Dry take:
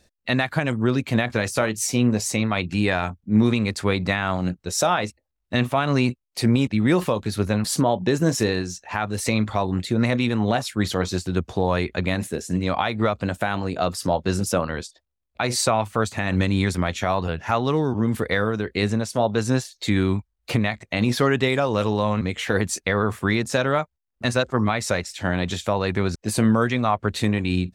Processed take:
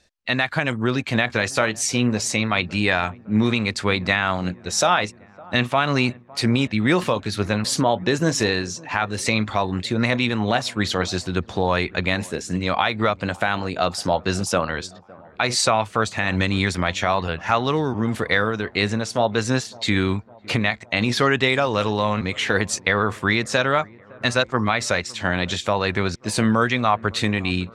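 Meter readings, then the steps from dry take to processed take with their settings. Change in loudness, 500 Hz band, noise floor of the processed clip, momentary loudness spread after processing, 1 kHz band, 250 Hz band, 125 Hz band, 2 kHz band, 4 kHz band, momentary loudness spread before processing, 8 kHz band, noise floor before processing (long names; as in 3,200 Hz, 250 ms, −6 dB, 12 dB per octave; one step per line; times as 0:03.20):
+1.0 dB, +0.5 dB, −47 dBFS, 5 LU, +3.0 dB, −1.0 dB, −1.5 dB, +5.0 dB, +5.0 dB, 5 LU, +1.5 dB, −77 dBFS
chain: tilt shelving filter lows −4.5 dB, about 900 Hz
automatic gain control gain up to 3.5 dB
high-frequency loss of the air 61 metres
delay with a low-pass on its return 559 ms, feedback 62%, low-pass 1,300 Hz, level −23 dB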